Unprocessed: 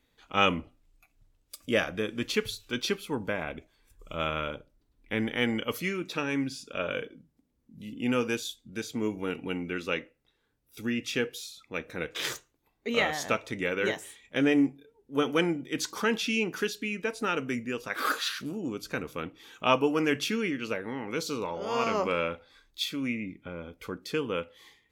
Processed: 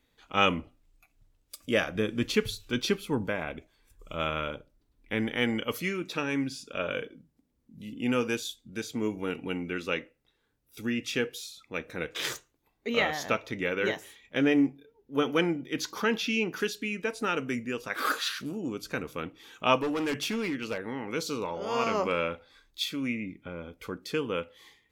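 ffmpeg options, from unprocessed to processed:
-filter_complex "[0:a]asettb=1/sr,asplit=3[a][b][c];[a]atrim=end=1.954[d];[b]atrim=start=1.95:end=3.27,asetpts=PTS-STARTPTS,afade=t=in:d=0.004:c=qsin,afade=t=out:st=1.316:d=0.004:c=qsin,lowshelf=f=280:g=7[e];[c]atrim=start=3.266[f];[d][e]acrossfade=d=0.004:c1=hsin:c2=qsin[g];[g][f]acrossfade=d=0.004:c1=qsin:c2=hsin,asettb=1/sr,asplit=3[h][i][j];[h]atrim=end=12.894[k];[i]atrim=start=12.89:end=16.6,asetpts=PTS-STARTPTS,afade=t=in:d=0.004:c=qsin,afade=t=out:st=3.706:d=0.004:c=qsin,equalizer=f=8.5k:t=o:w=0.38:g=-13.5[l];[j]atrim=start=16.596[m];[k][l]acrossfade=d=0.004:c1=hsin:c2=qsin[n];[n][m]acrossfade=d=0.004:c1=qsin:c2=hsin,asettb=1/sr,asplit=3[o][p][q];[o]atrim=end=19.764[r];[p]atrim=start=19.76:end=20.78,asetpts=PTS-STARTPTS,afade=t=in:d=0.004:c=qsin,afade=t=out:st=1.016:d=0.004:c=qsin,volume=26.5dB,asoftclip=hard,volume=-26.5dB[s];[q]atrim=start=20.776[t];[r][s]acrossfade=d=0.004:c1=hsin:c2=qsin[u];[u][t]acrossfade=d=0.004:c1=qsin:c2=hsin"

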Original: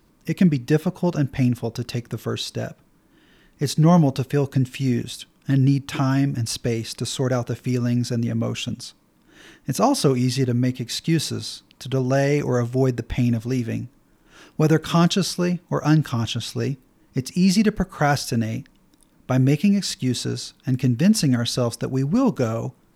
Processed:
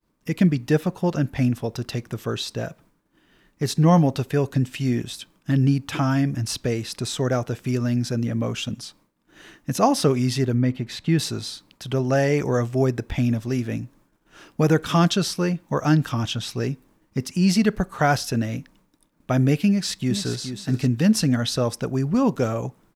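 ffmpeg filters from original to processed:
-filter_complex "[0:a]asettb=1/sr,asplit=3[a][b][c];[a]atrim=end=10.544[d];[b]atrim=start=10.54:end=11.19,asetpts=PTS-STARTPTS,afade=t=in:d=0.004:c=qsin,afade=t=out:st=0.646:d=0.004:c=qsin,bass=f=250:g=2,treble=f=4k:g=-11[e];[c]atrim=start=11.186[f];[d][e]acrossfade=d=0.004:c1=hsin:c2=qsin[g];[g][f]acrossfade=d=0.004:c1=qsin:c2=hsin,asplit=2[h][i];[i]afade=t=in:st=19.68:d=0.01,afade=t=out:st=20.44:d=0.01,aecho=0:1:420|840:0.354813|0.053222[j];[h][j]amix=inputs=2:normalize=0,agate=range=-33dB:threshold=-50dB:ratio=3:detection=peak,equalizer=f=1.1k:w=0.52:g=2.5,volume=-1.5dB"

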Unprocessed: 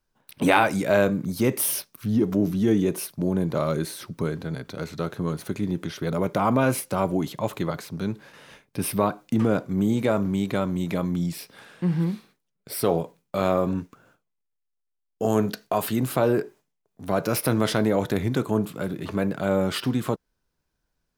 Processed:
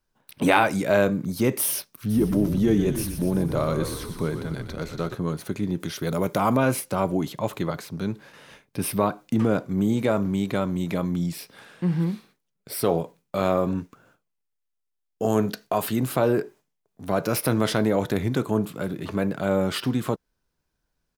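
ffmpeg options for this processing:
-filter_complex "[0:a]asplit=3[a][b][c];[a]afade=t=out:st=2.09:d=0.02[d];[b]asplit=9[e][f][g][h][i][j][k][l][m];[f]adelay=121,afreqshift=-46,volume=-8.5dB[n];[g]adelay=242,afreqshift=-92,volume=-12.8dB[o];[h]adelay=363,afreqshift=-138,volume=-17.1dB[p];[i]adelay=484,afreqshift=-184,volume=-21.4dB[q];[j]adelay=605,afreqshift=-230,volume=-25.7dB[r];[k]adelay=726,afreqshift=-276,volume=-30dB[s];[l]adelay=847,afreqshift=-322,volume=-34.3dB[t];[m]adelay=968,afreqshift=-368,volume=-38.6dB[u];[e][n][o][p][q][r][s][t][u]amix=inputs=9:normalize=0,afade=t=in:st=2.09:d=0.02,afade=t=out:st=5.14:d=0.02[v];[c]afade=t=in:st=5.14:d=0.02[w];[d][v][w]amix=inputs=3:normalize=0,asettb=1/sr,asplit=3[x][y][z];[x]atrim=end=5.804[aa];[y]atrim=start=5.8:end=6.57,asetpts=PTS-STARTPTS,afade=t=in:d=0.004:c=qsin,afade=t=out:st=0.766:d=0.004:c=qsin,highshelf=f=5.9k:g=11[ab];[z]atrim=start=6.566[ac];[aa][ab]acrossfade=d=0.004:c1=hsin:c2=qsin[ad];[ad][ac]acrossfade=d=0.004:c1=qsin:c2=hsin"

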